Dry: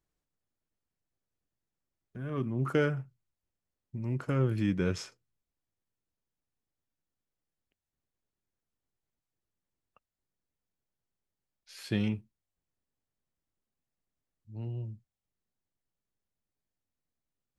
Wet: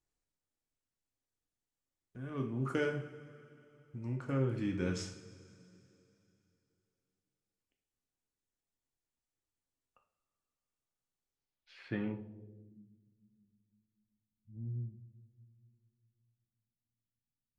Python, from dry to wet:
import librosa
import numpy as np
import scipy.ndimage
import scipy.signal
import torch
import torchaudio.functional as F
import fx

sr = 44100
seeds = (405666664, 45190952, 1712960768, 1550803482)

y = fx.high_shelf(x, sr, hz=4100.0, db=-7.5, at=(4.08, 4.74))
y = fx.rev_double_slope(y, sr, seeds[0], early_s=0.53, late_s=3.1, knee_db=-17, drr_db=2.0)
y = fx.filter_sweep_lowpass(y, sr, from_hz=8400.0, to_hz=200.0, start_s=11.23, end_s=12.9, q=1.7)
y = y * librosa.db_to_amplitude(-6.5)